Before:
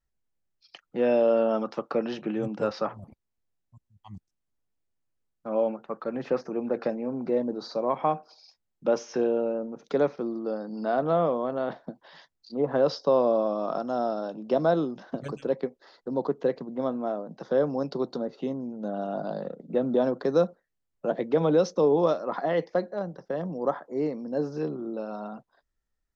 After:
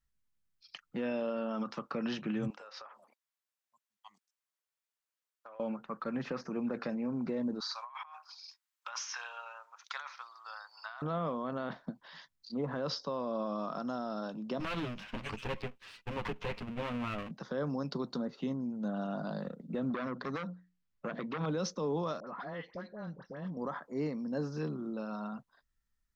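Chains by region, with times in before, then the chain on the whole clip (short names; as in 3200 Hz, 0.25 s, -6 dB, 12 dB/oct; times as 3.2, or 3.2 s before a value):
2.5–5.6 HPF 480 Hz 24 dB/oct + compressor 16:1, threshold -41 dBFS
7.6–11.02 steep high-pass 890 Hz + negative-ratio compressor -42 dBFS
14.6–17.31 minimum comb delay 9.6 ms + bell 2700 Hz +13 dB 0.73 oct
19.9–21.46 LPF 5800 Hz + notches 60/120/180/240/300 Hz + core saturation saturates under 1200 Hz
22.2–23.57 LPF 4600 Hz + compressor 2:1, threshold -39 dBFS + dispersion highs, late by 72 ms, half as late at 1300 Hz
whole clip: band shelf 500 Hz -8.5 dB; limiter -26.5 dBFS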